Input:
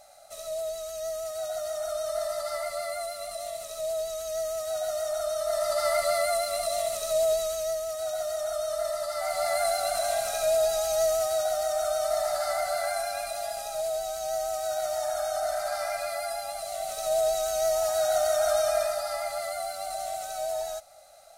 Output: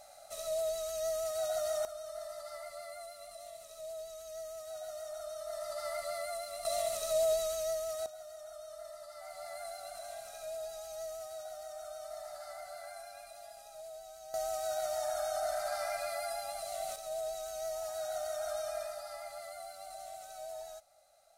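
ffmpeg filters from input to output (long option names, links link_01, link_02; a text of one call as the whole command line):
ffmpeg -i in.wav -af "asetnsamples=nb_out_samples=441:pad=0,asendcmd='1.85 volume volume -13dB;6.65 volume volume -5dB;8.06 volume volume -17.5dB;14.34 volume volume -5.5dB;16.96 volume volume -13dB',volume=-1.5dB" out.wav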